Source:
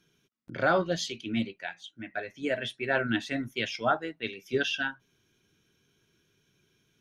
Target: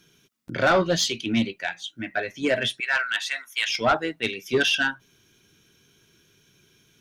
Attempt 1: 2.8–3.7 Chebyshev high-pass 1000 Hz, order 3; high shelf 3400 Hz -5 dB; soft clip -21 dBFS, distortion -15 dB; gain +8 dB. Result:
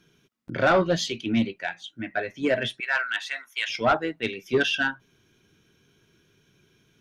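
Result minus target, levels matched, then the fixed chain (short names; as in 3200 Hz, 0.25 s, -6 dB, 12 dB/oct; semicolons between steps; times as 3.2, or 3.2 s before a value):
8000 Hz band -6.0 dB
2.8–3.7 Chebyshev high-pass 1000 Hz, order 3; high shelf 3400 Hz +5.5 dB; soft clip -21 dBFS, distortion -14 dB; gain +8 dB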